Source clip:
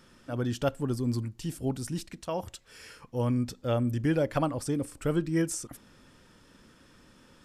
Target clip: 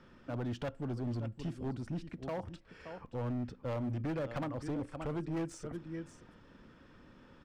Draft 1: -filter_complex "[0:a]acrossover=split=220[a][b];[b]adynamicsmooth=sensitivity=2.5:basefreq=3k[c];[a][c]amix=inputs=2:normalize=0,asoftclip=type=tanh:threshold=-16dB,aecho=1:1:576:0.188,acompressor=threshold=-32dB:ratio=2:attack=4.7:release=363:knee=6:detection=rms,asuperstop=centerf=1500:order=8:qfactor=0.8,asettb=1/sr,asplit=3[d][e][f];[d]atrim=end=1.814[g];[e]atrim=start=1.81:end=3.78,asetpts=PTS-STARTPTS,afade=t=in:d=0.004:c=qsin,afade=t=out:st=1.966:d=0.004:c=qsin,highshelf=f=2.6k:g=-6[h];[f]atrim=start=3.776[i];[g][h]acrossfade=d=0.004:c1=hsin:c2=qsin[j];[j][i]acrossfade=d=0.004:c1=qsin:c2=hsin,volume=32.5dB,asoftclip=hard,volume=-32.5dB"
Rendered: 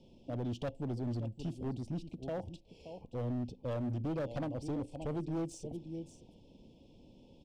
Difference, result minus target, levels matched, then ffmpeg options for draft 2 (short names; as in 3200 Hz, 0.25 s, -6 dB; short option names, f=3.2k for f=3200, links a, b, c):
soft clip: distortion +18 dB; 2000 Hz band -6.0 dB
-filter_complex "[0:a]acrossover=split=220[a][b];[b]adynamicsmooth=sensitivity=2.5:basefreq=3k[c];[a][c]amix=inputs=2:normalize=0,asoftclip=type=tanh:threshold=-6dB,aecho=1:1:576:0.188,acompressor=threshold=-32dB:ratio=2:attack=4.7:release=363:knee=6:detection=rms,asettb=1/sr,asplit=3[d][e][f];[d]atrim=end=1.814[g];[e]atrim=start=1.81:end=3.78,asetpts=PTS-STARTPTS,afade=t=in:d=0.004:c=qsin,afade=t=out:st=1.966:d=0.004:c=qsin,highshelf=f=2.6k:g=-6[h];[f]atrim=start=3.776[i];[g][h]acrossfade=d=0.004:c1=hsin:c2=qsin[j];[j][i]acrossfade=d=0.004:c1=qsin:c2=hsin,volume=32.5dB,asoftclip=hard,volume=-32.5dB"